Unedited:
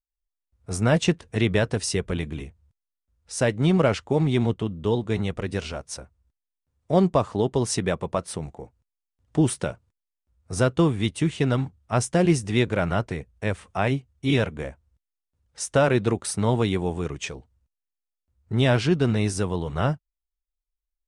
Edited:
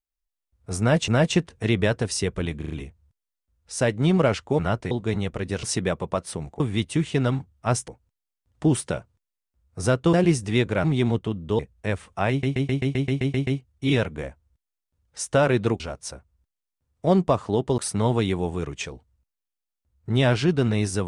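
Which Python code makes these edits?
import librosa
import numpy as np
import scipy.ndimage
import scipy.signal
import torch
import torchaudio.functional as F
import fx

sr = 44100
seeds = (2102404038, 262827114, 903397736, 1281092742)

y = fx.edit(x, sr, fx.repeat(start_s=0.8, length_s=0.28, count=2),
    fx.stutter(start_s=2.3, slice_s=0.04, count=4),
    fx.swap(start_s=4.19, length_s=0.75, other_s=12.85, other_length_s=0.32),
    fx.move(start_s=5.66, length_s=1.98, to_s=16.21),
    fx.move(start_s=10.86, length_s=1.28, to_s=8.61),
    fx.stutter(start_s=13.88, slice_s=0.13, count=10), tone=tone)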